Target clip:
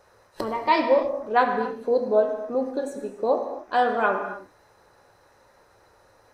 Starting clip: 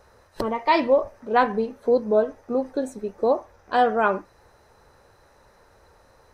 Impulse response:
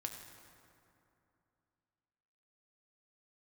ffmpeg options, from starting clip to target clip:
-filter_complex "[0:a]lowshelf=f=140:g=-10[a];[1:a]atrim=start_sample=2205,afade=t=out:st=0.34:d=0.01,atrim=end_sample=15435[b];[a][b]afir=irnorm=-1:irlink=0,volume=1.5dB"

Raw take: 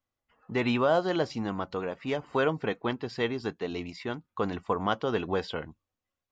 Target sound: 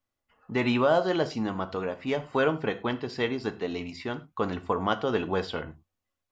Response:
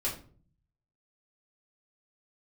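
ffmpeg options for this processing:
-filter_complex "[0:a]asplit=2[a][b];[1:a]atrim=start_sample=2205,atrim=end_sample=3087,asetrate=26019,aresample=44100[c];[b][c]afir=irnorm=-1:irlink=0,volume=-16.5dB[d];[a][d]amix=inputs=2:normalize=0"

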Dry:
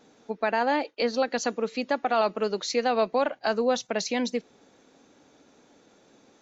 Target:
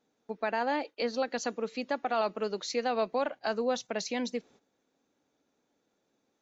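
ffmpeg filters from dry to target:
-af "agate=range=-13dB:threshold=-50dB:ratio=16:detection=peak,volume=-5.5dB"

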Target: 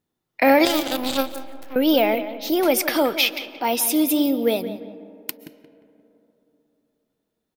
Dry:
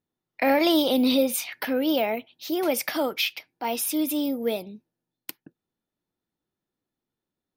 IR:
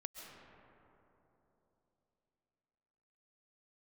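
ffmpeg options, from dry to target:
-filter_complex "[0:a]asettb=1/sr,asplit=3[a][b][c];[a]atrim=end=0.654[d];[b]atrim=start=0.65:end=1.76,asetpts=PTS-STARTPTS,afade=t=in:d=0.004:c=qsin,afade=t=out:st=1.106:d=0.004:c=qsin,aeval=exprs='0.299*(cos(1*acos(clip(val(0)/0.299,-1,1)))-cos(1*PI/2))+0.106*(cos(3*acos(clip(val(0)/0.299,-1,1)))-cos(3*PI/2))':c=same[e];[c]atrim=start=1.756[f];[d][e]acrossfade=d=0.004:c1=hsin:c2=qsin[g];[g][f]acrossfade=d=0.004:c1=qsin:c2=hsin,asplit=2[h][i];[i]adelay=176,lowpass=f=2.4k:p=1,volume=-12.5dB,asplit=2[j][k];[k]adelay=176,lowpass=f=2.4k:p=1,volume=0.36,asplit=2[l][m];[m]adelay=176,lowpass=f=2.4k:p=1,volume=0.36,asplit=2[n][o];[o]adelay=176,lowpass=f=2.4k:p=1,volume=0.36[p];[h][j][l][n][p]amix=inputs=5:normalize=0,asplit=2[q][r];[1:a]atrim=start_sample=2205,highshelf=f=9.7k:g=7.5[s];[r][s]afir=irnorm=-1:irlink=0,volume=-10.5dB[t];[q][t]amix=inputs=2:normalize=0,volume=4.5dB"

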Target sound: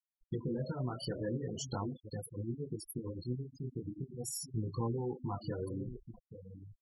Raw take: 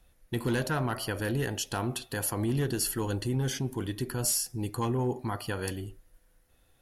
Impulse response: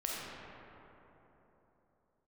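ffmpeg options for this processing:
-filter_complex "[0:a]equalizer=f=160:t=o:w=0.33:g=10,equalizer=f=500:t=o:w=0.33:g=4,equalizer=f=1.6k:t=o:w=0.33:g=-11,equalizer=f=2.5k:t=o:w=0.33:g=-7,equalizer=f=12.5k:t=o:w=0.33:g=-4,aecho=1:1:833:0.15,adynamicequalizer=threshold=0.002:dfrequency=1600:dqfactor=2.8:tfrequency=1600:tqfactor=2.8:attack=5:release=100:ratio=0.375:range=2:mode=boostabove:tftype=bell,acompressor=threshold=-34dB:ratio=8,asettb=1/sr,asplit=3[a][b][c];[a]atrim=end=1.944[d];[b]atrim=start=1.94:end=4.31,asetpts=PTS-STARTPTS,afade=t=in:d=0.004:c=qsin,afade=t=out:st=2.366:d=0.004:c=qsin,acrossover=split=2100[e][f];[e]aeval=exprs='val(0)*(1-0.7/2+0.7/2*cos(2*PI*8.8*n/s))':c=same[g];[f]aeval=exprs='val(0)*(1-0.7/2-0.7/2*cos(2*PI*8.8*n/s))':c=same[h];[g][h]amix=inputs=2:normalize=0[i];[c]atrim=start=4.306[j];[d][i]acrossfade=d=0.004:c1=hsin:c2=qsin[k];[k][j]acrossfade=d=0.004:c1=qsin:c2=hsin,flanger=delay=17.5:depth=7.6:speed=0.42,afftfilt=real='re*gte(hypot(re,im),0.0141)':imag='im*gte(hypot(re,im),0.0141)':win_size=1024:overlap=0.75,volume=4dB"

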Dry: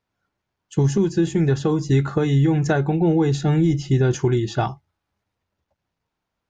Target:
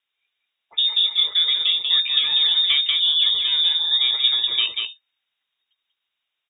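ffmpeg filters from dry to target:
-filter_complex "[0:a]equalizer=f=1.3k:w=0.33:g=4,asplit=2[a][b];[b]aecho=0:1:190:0.631[c];[a][c]amix=inputs=2:normalize=0,lowpass=f=3.2k:t=q:w=0.5098,lowpass=f=3.2k:t=q:w=0.6013,lowpass=f=3.2k:t=q:w=0.9,lowpass=f=3.2k:t=q:w=2.563,afreqshift=-3800,volume=-3.5dB"

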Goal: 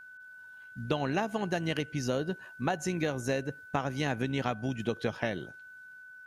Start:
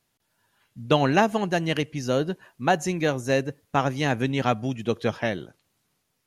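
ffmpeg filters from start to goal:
-af "acompressor=threshold=-26dB:ratio=6,aeval=exprs='val(0)+0.00501*sin(2*PI*1500*n/s)':c=same,tremolo=f=61:d=0.261"

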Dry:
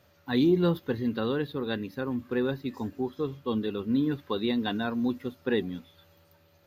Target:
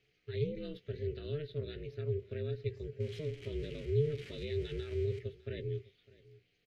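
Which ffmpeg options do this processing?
-filter_complex "[0:a]asettb=1/sr,asplit=3[a][b][c];[a]atrim=end=3.004[d];[b]atrim=start=3:end=5.19,asetpts=PTS-STARTPTS,afade=t=in:d=0.004:c=qsin,afade=t=out:st=2.186:d=0.004:c=qsin,aeval=exprs='val(0)+0.5*0.02*sgn(val(0))':c=same[e];[c]atrim=start=5.186[f];[d][e]acrossfade=d=0.004:c1=hsin:c2=qsin[g];[g][f]acrossfade=d=0.004:c1=qsin:c2=hsin,lowpass=11k,highshelf=f=2.7k:g=11.5,bandreject=f=3.4k:w=7.6,alimiter=limit=-21.5dB:level=0:latency=1:release=43,asplit=3[h][i][j];[h]bandpass=f=270:t=q:w=8,volume=0dB[k];[i]bandpass=f=2.29k:t=q:w=8,volume=-6dB[l];[j]bandpass=f=3.01k:t=q:w=8,volume=-9dB[m];[k][l][m]amix=inputs=3:normalize=0,aeval=exprs='val(0)*sin(2*PI*150*n/s)':c=same,asplit=2[n][o];[o]adelay=16,volume=-13dB[p];[n][p]amix=inputs=2:normalize=0,aecho=1:1:605:0.0841,volume=4dB"

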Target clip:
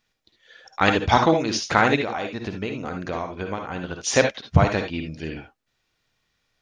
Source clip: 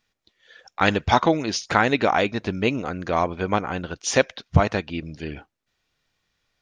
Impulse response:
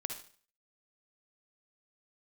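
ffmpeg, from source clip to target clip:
-filter_complex "[0:a]asplit=3[a][b][c];[a]afade=t=out:st=1.95:d=0.02[d];[b]acompressor=threshold=-26dB:ratio=6,afade=t=in:st=1.95:d=0.02,afade=t=out:st=3.99:d=0.02[e];[c]afade=t=in:st=3.99:d=0.02[f];[d][e][f]amix=inputs=3:normalize=0[g];[1:a]atrim=start_sample=2205,atrim=end_sample=3969[h];[g][h]afir=irnorm=-1:irlink=0,volume=1.5dB"

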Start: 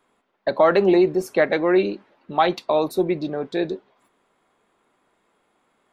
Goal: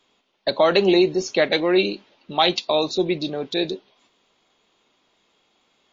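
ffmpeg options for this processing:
-af "highshelf=f=2.3k:t=q:w=1.5:g=10" -ar 16000 -c:a libmp3lame -b:a 32k

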